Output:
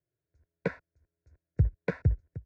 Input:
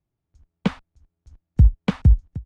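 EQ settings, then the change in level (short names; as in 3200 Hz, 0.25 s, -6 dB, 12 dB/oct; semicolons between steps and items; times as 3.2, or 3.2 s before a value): BPF 130–3000 Hz; Butterworth band-stop 1200 Hz, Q 3.4; fixed phaser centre 840 Hz, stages 6; 0.0 dB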